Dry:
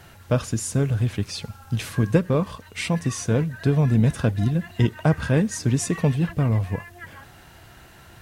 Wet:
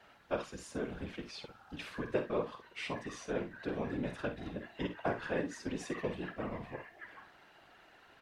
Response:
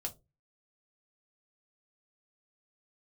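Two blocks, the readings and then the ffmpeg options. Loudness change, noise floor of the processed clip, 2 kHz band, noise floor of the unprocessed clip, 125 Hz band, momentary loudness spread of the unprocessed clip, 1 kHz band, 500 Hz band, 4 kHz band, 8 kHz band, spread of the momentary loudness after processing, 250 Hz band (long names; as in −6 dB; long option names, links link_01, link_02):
−16.5 dB, −62 dBFS, −9.5 dB, −48 dBFS, −26.5 dB, 11 LU, −9.0 dB, −10.5 dB, −12.5 dB, −21.5 dB, 11 LU, −16.5 dB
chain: -filter_complex "[0:a]afftfilt=real='hypot(re,im)*cos(2*PI*random(0))':imag='hypot(re,im)*sin(2*PI*random(1))':win_size=512:overlap=0.75,acrossover=split=300 4500:gain=0.141 1 0.141[link_01][link_02][link_03];[link_01][link_02][link_03]amix=inputs=3:normalize=0,aecho=1:1:49|66:0.299|0.211,volume=-4dB"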